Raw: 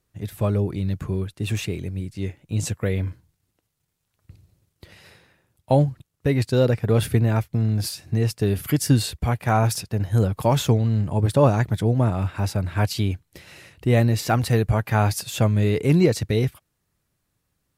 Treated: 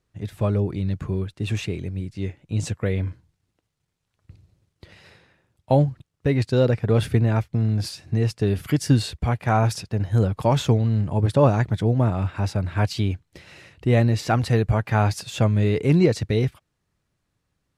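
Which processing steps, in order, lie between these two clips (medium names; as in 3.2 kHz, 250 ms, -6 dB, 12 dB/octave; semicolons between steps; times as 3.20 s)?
distance through air 54 m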